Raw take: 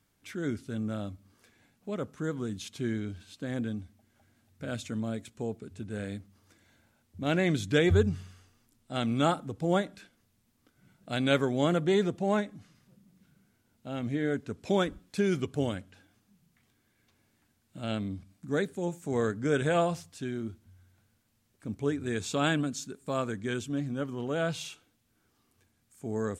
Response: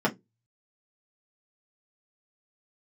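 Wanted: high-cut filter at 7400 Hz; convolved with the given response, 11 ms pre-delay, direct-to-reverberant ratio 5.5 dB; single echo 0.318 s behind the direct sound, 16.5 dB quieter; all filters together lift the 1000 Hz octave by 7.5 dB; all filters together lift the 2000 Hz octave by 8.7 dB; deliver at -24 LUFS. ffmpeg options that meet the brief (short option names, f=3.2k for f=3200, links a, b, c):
-filter_complex "[0:a]lowpass=7.4k,equalizer=f=1k:t=o:g=8,equalizer=f=2k:t=o:g=8.5,aecho=1:1:318:0.15,asplit=2[a][b];[1:a]atrim=start_sample=2205,adelay=11[c];[b][c]afir=irnorm=-1:irlink=0,volume=-18dB[d];[a][d]amix=inputs=2:normalize=0,volume=2dB"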